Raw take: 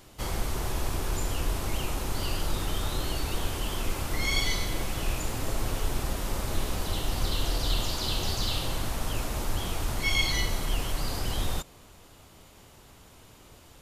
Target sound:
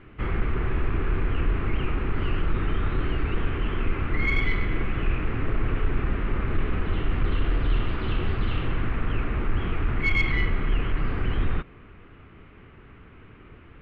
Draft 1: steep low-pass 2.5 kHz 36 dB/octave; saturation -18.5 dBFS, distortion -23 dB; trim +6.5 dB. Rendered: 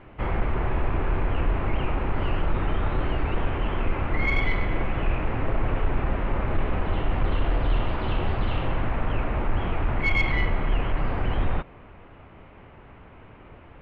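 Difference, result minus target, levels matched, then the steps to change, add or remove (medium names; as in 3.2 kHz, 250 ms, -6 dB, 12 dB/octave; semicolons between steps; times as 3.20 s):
1 kHz band +4.5 dB
add after steep low-pass: high-order bell 720 Hz -9.5 dB 1.1 oct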